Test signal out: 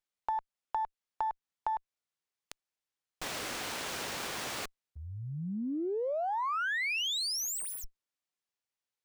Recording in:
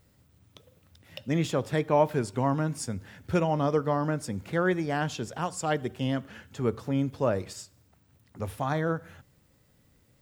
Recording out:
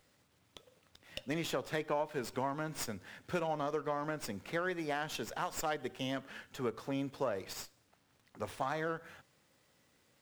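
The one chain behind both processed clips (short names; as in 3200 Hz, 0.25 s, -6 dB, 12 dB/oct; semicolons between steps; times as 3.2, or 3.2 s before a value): HPF 550 Hz 6 dB/oct; compressor 6:1, threshold -31 dBFS; running maximum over 3 samples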